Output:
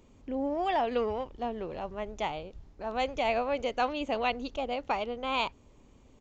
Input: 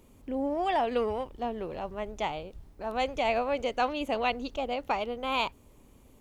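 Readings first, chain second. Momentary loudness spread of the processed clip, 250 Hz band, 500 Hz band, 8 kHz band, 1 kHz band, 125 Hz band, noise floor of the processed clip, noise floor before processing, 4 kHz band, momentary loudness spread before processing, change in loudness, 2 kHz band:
9 LU, −1.0 dB, −1.0 dB, can't be measured, −1.0 dB, −1.0 dB, −59 dBFS, −58 dBFS, −1.0 dB, 9 LU, −1.0 dB, −1.0 dB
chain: downsampling to 16,000 Hz
level −1 dB

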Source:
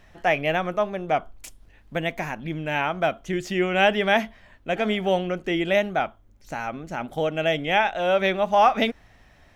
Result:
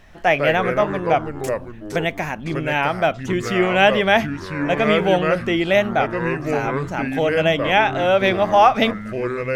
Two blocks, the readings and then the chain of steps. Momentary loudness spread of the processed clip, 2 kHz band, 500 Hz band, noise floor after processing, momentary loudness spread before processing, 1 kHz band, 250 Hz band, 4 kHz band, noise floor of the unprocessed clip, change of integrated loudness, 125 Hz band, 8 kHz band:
10 LU, +5.5 dB, +5.5 dB, −35 dBFS, 12 LU, +5.0 dB, +6.0 dB, +4.5 dB, −55 dBFS, +5.0 dB, +7.5 dB, can't be measured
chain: delay with pitch and tempo change per echo 87 ms, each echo −4 semitones, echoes 3, each echo −6 dB
level +4.5 dB

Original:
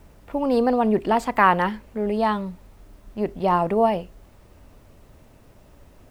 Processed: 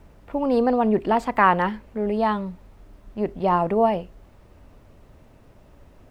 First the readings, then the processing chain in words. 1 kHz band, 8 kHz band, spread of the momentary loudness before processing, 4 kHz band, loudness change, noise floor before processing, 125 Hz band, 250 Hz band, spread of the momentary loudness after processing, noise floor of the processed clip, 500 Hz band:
−0.5 dB, can't be measured, 12 LU, −2.5 dB, 0.0 dB, −52 dBFS, 0.0 dB, 0.0 dB, 11 LU, −52 dBFS, 0.0 dB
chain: high-shelf EQ 4,800 Hz −8.5 dB

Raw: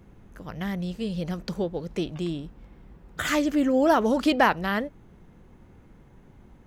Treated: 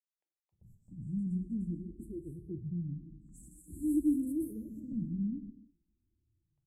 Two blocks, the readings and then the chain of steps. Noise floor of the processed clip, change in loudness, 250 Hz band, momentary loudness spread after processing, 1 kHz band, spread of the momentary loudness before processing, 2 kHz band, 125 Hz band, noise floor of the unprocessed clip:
below −85 dBFS, −11.0 dB, −7.0 dB, 21 LU, below −40 dB, 17 LU, below −40 dB, −4.5 dB, −53 dBFS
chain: variable-slope delta modulation 64 kbit/s
Chebyshev band-stop filter 340–7,800 Hz, order 5
low-pass that shuts in the quiet parts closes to 330 Hz, open at −24.5 dBFS
noise gate with hold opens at −42 dBFS
parametric band 98 Hz +7 dB 0.71 octaves
pitch vibrato 0.41 Hz 20 cents
flanger 1.9 Hz, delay 0.2 ms, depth 8.3 ms, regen −69%
three-band delay without the direct sound highs, mids, lows 120/510 ms, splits 870/5,100 Hz
reverb whose tail is shaped and stops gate 370 ms falling, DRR 8.5 dB
frequency shifter mixed with the dry sound +0.49 Hz

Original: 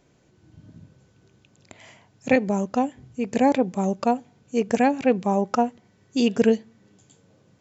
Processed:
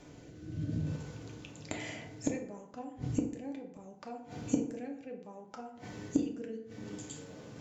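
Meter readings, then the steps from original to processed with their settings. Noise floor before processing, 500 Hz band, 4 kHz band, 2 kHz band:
−61 dBFS, −19.0 dB, −13.0 dB, −16.0 dB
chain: transient designer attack +1 dB, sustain +5 dB
rotating-speaker cabinet horn 0.65 Hz
gate with flip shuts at −25 dBFS, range −33 dB
feedback delay network reverb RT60 0.75 s, low-frequency decay 0.9×, high-frequency decay 0.55×, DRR 1.5 dB
level +9 dB

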